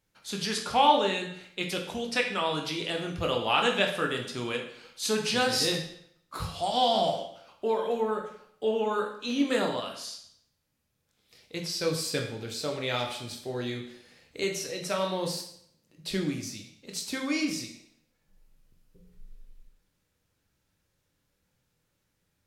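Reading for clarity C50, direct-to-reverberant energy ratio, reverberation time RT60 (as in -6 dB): 6.5 dB, 2.0 dB, 0.70 s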